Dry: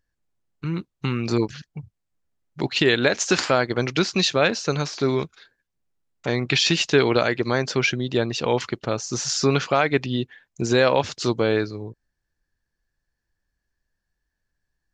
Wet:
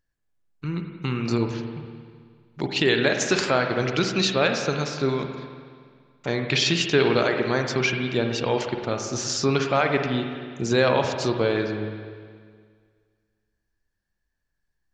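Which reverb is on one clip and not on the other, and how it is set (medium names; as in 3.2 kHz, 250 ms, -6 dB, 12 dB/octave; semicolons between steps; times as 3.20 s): spring tank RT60 1.9 s, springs 47/52 ms, chirp 50 ms, DRR 4 dB; trim -2.5 dB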